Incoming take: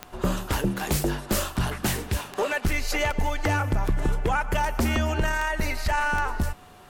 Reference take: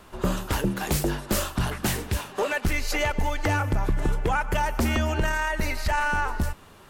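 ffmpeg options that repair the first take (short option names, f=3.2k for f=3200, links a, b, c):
-af "adeclick=t=4,bandreject=f=730:w=30"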